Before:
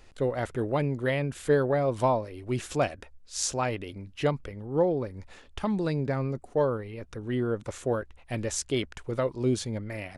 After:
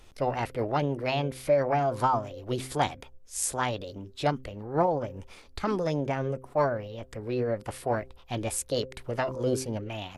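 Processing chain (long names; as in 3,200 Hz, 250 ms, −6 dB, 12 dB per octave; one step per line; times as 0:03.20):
hum removal 130.2 Hz, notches 4
formants moved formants +5 semitones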